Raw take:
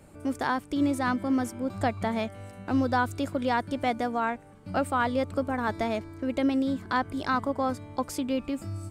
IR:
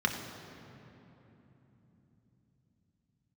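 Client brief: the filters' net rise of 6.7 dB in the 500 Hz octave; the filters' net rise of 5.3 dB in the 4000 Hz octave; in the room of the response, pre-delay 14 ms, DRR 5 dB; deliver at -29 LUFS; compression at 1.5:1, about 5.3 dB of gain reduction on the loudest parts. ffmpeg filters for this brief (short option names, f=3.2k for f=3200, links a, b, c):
-filter_complex "[0:a]equalizer=f=500:t=o:g=7.5,equalizer=f=4k:t=o:g=6.5,acompressor=threshold=-32dB:ratio=1.5,asplit=2[a][b];[1:a]atrim=start_sample=2205,adelay=14[c];[b][c]afir=irnorm=-1:irlink=0,volume=-14.5dB[d];[a][d]amix=inputs=2:normalize=0"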